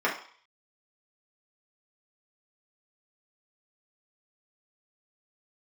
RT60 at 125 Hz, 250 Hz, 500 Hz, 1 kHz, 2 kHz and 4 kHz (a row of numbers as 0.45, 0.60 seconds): 0.25, 0.35, 0.45, 0.55, 0.55, 0.60 seconds